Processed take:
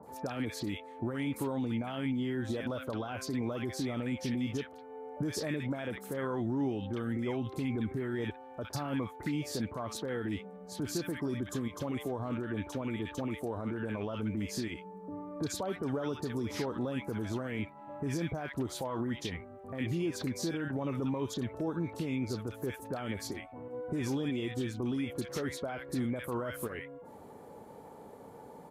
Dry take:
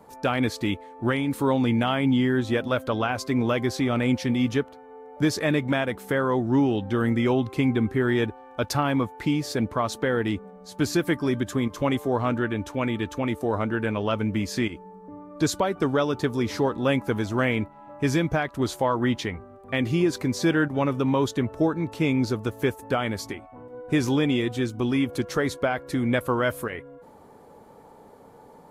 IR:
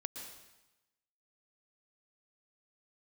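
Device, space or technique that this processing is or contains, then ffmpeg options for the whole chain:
stacked limiters: -filter_complex "[0:a]highpass=61,alimiter=limit=0.15:level=0:latency=1,alimiter=limit=0.0794:level=0:latency=1:release=467,alimiter=level_in=1.19:limit=0.0631:level=0:latency=1,volume=0.841,acrossover=split=1300|4600[s0][s1][s2];[s2]adelay=30[s3];[s1]adelay=60[s4];[s0][s4][s3]amix=inputs=3:normalize=0"

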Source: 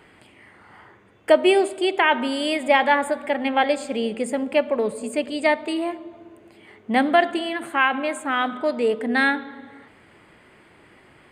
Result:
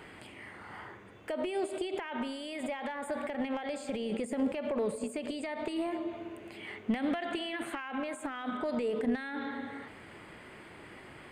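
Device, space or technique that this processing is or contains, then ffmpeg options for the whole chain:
de-esser from a sidechain: -filter_complex "[0:a]asplit=2[s0][s1];[s1]highpass=f=4600:p=1,apad=whole_len=498946[s2];[s0][s2]sidechaincompress=threshold=0.00398:ratio=8:attack=0.66:release=38,asettb=1/sr,asplit=3[s3][s4][s5];[s3]atrim=end=6.084[s6];[s4]atrim=start=6.08:end=7.8,asetpts=PTS-STARTPTS,afade=t=in:d=0.004:c=qsin,afade=t=out:st=1.716:d=0.004:c=qsin,equalizer=f=2600:t=o:w=1.1:g=5.5[s7];[s5]atrim=start=7.796[s8];[s6][s7]acrossfade=d=0.004:c1=hsin:c2=qsin[s9];[s9][s8]acrossfade=d=0.004:c1=qsin:c2=hsin,volume=1.26"

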